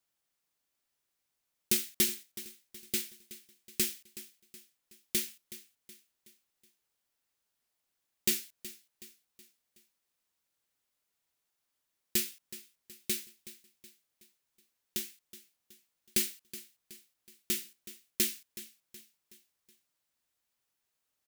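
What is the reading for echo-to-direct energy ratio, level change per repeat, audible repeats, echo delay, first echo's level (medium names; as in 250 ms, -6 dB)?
-15.0 dB, -6.5 dB, 3, 372 ms, -16.0 dB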